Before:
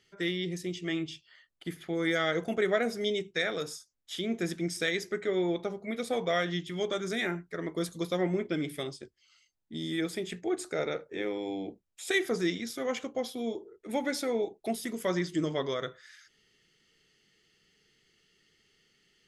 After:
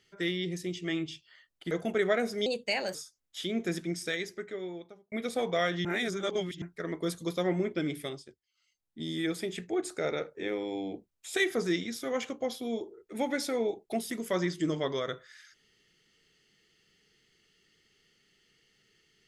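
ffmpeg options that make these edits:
-filter_complex "[0:a]asplit=9[s0][s1][s2][s3][s4][s5][s6][s7][s8];[s0]atrim=end=1.712[s9];[s1]atrim=start=2.338:end=3.094[s10];[s2]atrim=start=3.09:end=3.69,asetpts=PTS-STARTPTS,asetrate=54243,aresample=44100,atrim=end_sample=21512,asetpts=PTS-STARTPTS[s11];[s3]atrim=start=3.686:end=5.86,asetpts=PTS-STARTPTS,afade=t=out:st=0.734:d=1.44[s12];[s4]atrim=start=5.86:end=6.592,asetpts=PTS-STARTPTS,afade=t=in:d=0.004:c=hsin[s13];[s5]atrim=start=6.588:end=7.362,asetpts=PTS-STARTPTS,areverse[s14];[s6]atrim=start=7.358:end=9.19,asetpts=PTS-STARTPTS,afade=t=out:st=1.362:d=0.47:silence=0.16788[s15];[s7]atrim=start=9.19:end=9.29,asetpts=PTS-STARTPTS,volume=0.168[s16];[s8]atrim=start=9.29,asetpts=PTS-STARTPTS,afade=t=in:d=0.47:silence=0.16788[s17];[s9][s10]acrossfade=d=0.004:c1=hsin:c2=hsin[s18];[s18][s11]acrossfade=d=0.004:c1=hsin:c2=hsin[s19];[s12][s13]concat=n=2:v=0:a=1[s20];[s19][s20]acrossfade=d=0.004:c1=hsin:c2=hsin[s21];[s21][s14]acrossfade=d=0.004:c1=hsin:c2=hsin[s22];[s15][s16][s17]concat=n=3:v=0:a=1[s23];[s22][s23]acrossfade=d=0.004:c1=hsin:c2=hsin"

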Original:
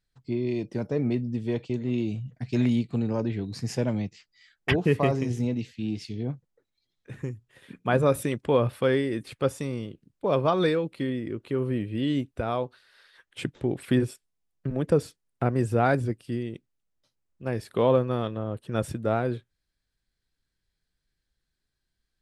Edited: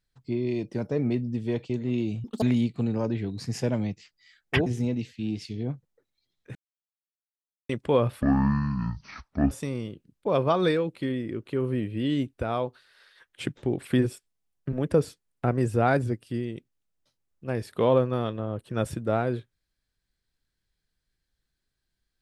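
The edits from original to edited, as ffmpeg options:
-filter_complex "[0:a]asplit=8[s0][s1][s2][s3][s4][s5][s6][s7];[s0]atrim=end=2.244[s8];[s1]atrim=start=2.24:end=2.57,asetpts=PTS-STARTPTS,asetrate=79821,aresample=44100,atrim=end_sample=8040,asetpts=PTS-STARTPTS[s9];[s2]atrim=start=2.566:end=4.812[s10];[s3]atrim=start=5.258:end=7.15,asetpts=PTS-STARTPTS,afade=t=out:st=1.888:d=0.004:c=hsin[s11];[s4]atrim=start=7.15:end=8.29,asetpts=PTS-STARTPTS,volume=0[s12];[s5]atrim=start=8.29:end=8.824,asetpts=PTS-STARTPTS,afade=t=in:d=0.004:c=hsin[s13];[s6]atrim=start=8.82:end=9.49,asetpts=PTS-STARTPTS,asetrate=22932,aresample=44100,atrim=end_sample=56821,asetpts=PTS-STARTPTS[s14];[s7]atrim=start=9.486[s15];[s8][s9]acrossfade=d=0.004:c1=hsin:c2=hsin[s16];[s16][s10]acrossfade=d=0.004:c1=hsin:c2=hsin[s17];[s11][s12][s13]concat=n=3:v=0:a=1[s18];[s17][s18]acrossfade=d=0.004:c1=hsin:c2=hsin[s19];[s19][s14]acrossfade=d=0.004:c1=hsin:c2=hsin[s20];[s20][s15]acrossfade=d=0.004:c1=hsin:c2=hsin"

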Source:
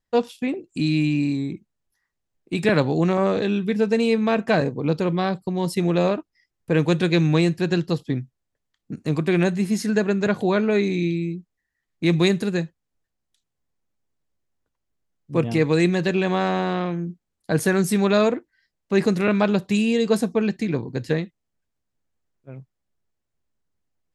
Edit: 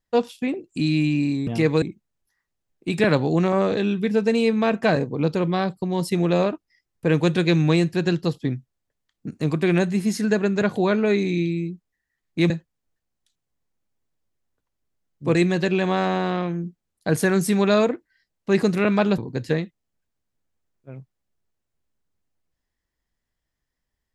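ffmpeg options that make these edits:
-filter_complex "[0:a]asplit=6[s0][s1][s2][s3][s4][s5];[s0]atrim=end=1.472[s6];[s1]atrim=start=15.428:end=15.782[s7];[s2]atrim=start=1.468:end=12.152[s8];[s3]atrim=start=12.578:end=15.432[s9];[s4]atrim=start=15.778:end=19.612[s10];[s5]atrim=start=20.778[s11];[s6][s7]acrossfade=d=0.004:c1=hsin:c2=hsin[s12];[s12][s8]acrossfade=d=0.004:c1=hsin:c2=hsin[s13];[s13][s9]acrossfade=d=0.004:c1=hsin:c2=hsin[s14];[s14][s10]acrossfade=d=0.004:c1=hsin:c2=hsin[s15];[s15][s11]acrossfade=d=0.004:c1=hsin:c2=hsin"

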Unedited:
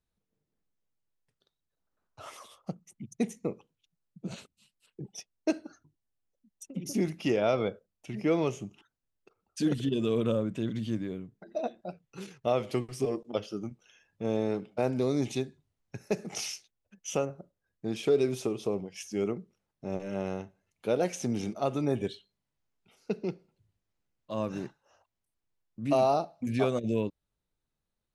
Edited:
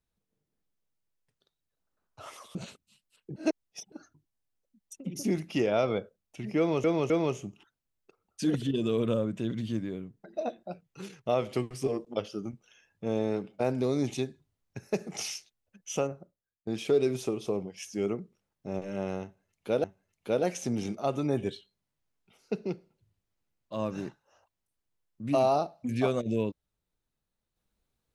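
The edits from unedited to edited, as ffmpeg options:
-filter_complex "[0:a]asplit=8[s0][s1][s2][s3][s4][s5][s6][s7];[s0]atrim=end=2.552[s8];[s1]atrim=start=4.248:end=5.062[s9];[s2]atrim=start=5.058:end=5.622,asetpts=PTS-STARTPTS,areverse[s10];[s3]atrim=start=5.618:end=8.542[s11];[s4]atrim=start=8.278:end=8.542[s12];[s5]atrim=start=8.278:end=17.85,asetpts=PTS-STARTPTS,afade=t=out:st=9.022:d=0.55:c=qua:silence=0.0841395[s13];[s6]atrim=start=17.85:end=21.022,asetpts=PTS-STARTPTS,afade=t=in:d=0.004:c=hsin:silence=0.0841395[s14];[s7]atrim=start=20.418[s15];[s8][s9]acrossfade=d=0.004:c1=hsin:c2=hsin[s16];[s16][s10]acrossfade=d=0.004:c1=hsin:c2=hsin[s17];[s17][s11]acrossfade=d=0.004:c1=hsin:c2=hsin[s18];[s18][s12]acrossfade=d=0.004:c1=hsin:c2=hsin[s19];[s13][s14]concat=n=2:v=0:a=1[s20];[s19][s20]acrossfade=d=0.004:c1=hsin:c2=hsin[s21];[s21][s15]acrossfade=d=0.004:c1=hsin:c2=hsin"

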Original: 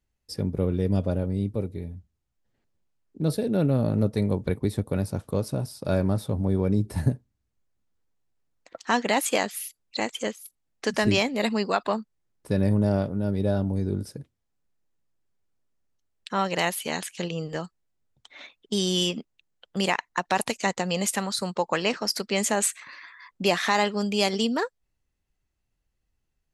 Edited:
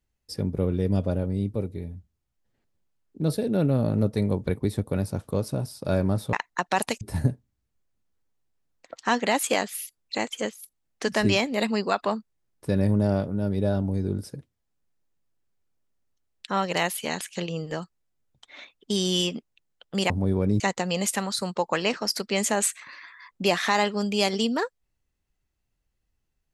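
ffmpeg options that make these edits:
-filter_complex "[0:a]asplit=5[s0][s1][s2][s3][s4];[s0]atrim=end=6.332[s5];[s1]atrim=start=19.918:end=20.602[s6];[s2]atrim=start=6.828:end=19.922[s7];[s3]atrim=start=6.328:end=6.832[s8];[s4]atrim=start=20.598[s9];[s5][s6]acrossfade=d=0.004:c1=hsin:c2=hsin[s10];[s10][s7]acrossfade=d=0.004:c1=hsin:c2=hsin[s11];[s11][s8]acrossfade=d=0.004:c1=hsin:c2=hsin[s12];[s12][s9]acrossfade=d=0.004:c1=hsin:c2=hsin"

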